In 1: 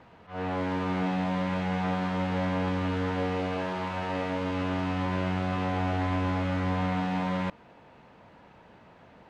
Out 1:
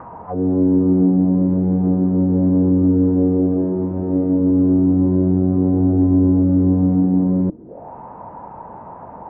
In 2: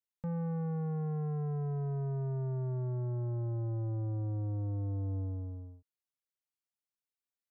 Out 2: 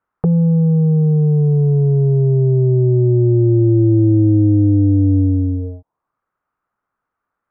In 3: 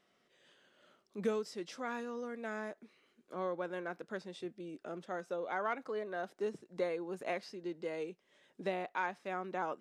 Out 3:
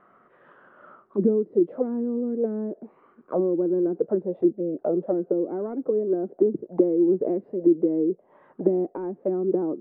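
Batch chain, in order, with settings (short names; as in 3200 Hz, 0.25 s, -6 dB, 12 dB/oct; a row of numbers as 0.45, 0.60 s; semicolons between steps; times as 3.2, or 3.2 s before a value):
in parallel at -1 dB: compressor, threshold -38 dBFS; on the sum: air absorption 400 m; envelope low-pass 330–1300 Hz down, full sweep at -33.5 dBFS; normalise peaks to -6 dBFS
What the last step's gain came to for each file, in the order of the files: +8.5, +16.0, +9.0 dB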